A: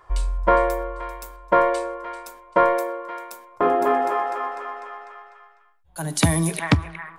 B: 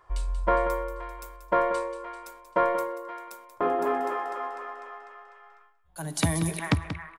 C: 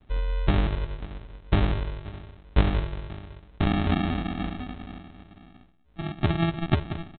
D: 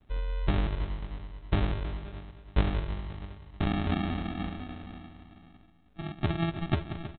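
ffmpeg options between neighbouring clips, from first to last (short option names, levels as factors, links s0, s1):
-af "aecho=1:1:184:0.266,areverse,acompressor=mode=upward:threshold=0.01:ratio=2.5,areverse,volume=0.473"
-af "bandreject=f=2800:w=15,aresample=8000,acrusher=samples=16:mix=1:aa=0.000001,aresample=44100,volume=1.33"
-af "aecho=1:1:319|638|957|1276:0.224|0.0851|0.0323|0.0123,volume=0.562"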